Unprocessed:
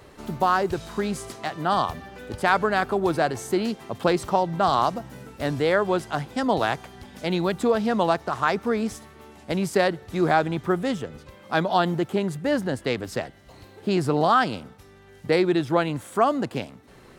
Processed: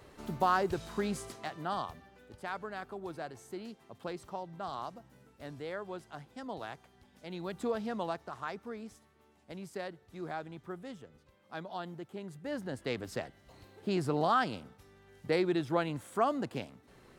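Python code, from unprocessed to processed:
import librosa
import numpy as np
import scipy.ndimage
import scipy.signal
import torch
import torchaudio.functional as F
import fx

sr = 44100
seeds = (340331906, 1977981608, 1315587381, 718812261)

y = fx.gain(x, sr, db=fx.line((1.18, -7.0), (2.3, -19.0), (7.26, -19.0), (7.66, -12.0), (8.87, -19.5), (12.13, -19.5), (12.97, -9.0)))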